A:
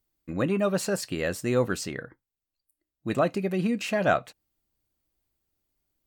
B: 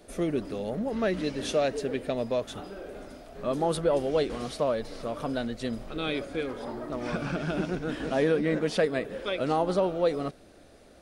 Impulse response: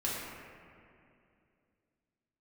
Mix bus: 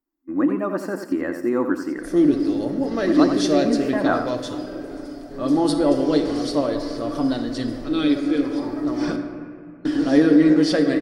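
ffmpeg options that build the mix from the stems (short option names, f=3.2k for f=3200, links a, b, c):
-filter_complex "[0:a]equalizer=f=125:t=o:w=1:g=-12,equalizer=f=250:t=o:w=1:g=12,equalizer=f=1k:t=o:w=1:g=11,equalizer=f=2k:t=o:w=1:g=6,equalizer=f=4k:t=o:w=1:g=-11,equalizer=f=8k:t=o:w=1:g=-6,volume=-12dB,asplit=3[a][b][c];[b]volume=-18.5dB[d];[c]volume=-7.5dB[e];[1:a]adynamicequalizer=threshold=0.00398:dfrequency=4000:dqfactor=0.83:tfrequency=4000:tqfactor=0.83:attack=5:release=100:ratio=0.375:range=2.5:mode=boostabove:tftype=bell,aecho=1:1:7:0.38,adelay=1950,volume=-6dB,asplit=3[f][g][h];[f]atrim=end=9.16,asetpts=PTS-STARTPTS,afade=t=out:st=9.156:d=0.004:c=hsin[i];[g]atrim=start=9.16:end=9.85,asetpts=PTS-STARTPTS,volume=0[j];[h]atrim=start=9.85,asetpts=PTS-STARTPTS,afade=t=in:d=0.004:c=hsin[k];[i][j][k]concat=n=3:v=0:a=1,asplit=2[l][m];[m]volume=-7dB[n];[2:a]atrim=start_sample=2205[o];[d][n]amix=inputs=2:normalize=0[p];[p][o]afir=irnorm=-1:irlink=0[q];[e]aecho=0:1:87|174|261|348|435:1|0.32|0.102|0.0328|0.0105[r];[a][l][q][r]amix=inputs=4:normalize=0,dynaudnorm=f=130:g=5:m=5dB,superequalizer=6b=3.55:12b=0.501:13b=0.708:14b=1.78"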